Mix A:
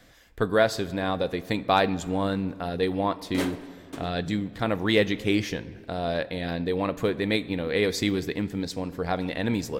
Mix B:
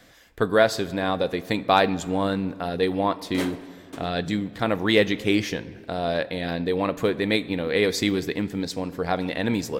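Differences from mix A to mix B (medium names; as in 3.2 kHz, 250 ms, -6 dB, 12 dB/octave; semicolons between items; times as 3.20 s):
speech +3.0 dB; master: add bass shelf 83 Hz -9 dB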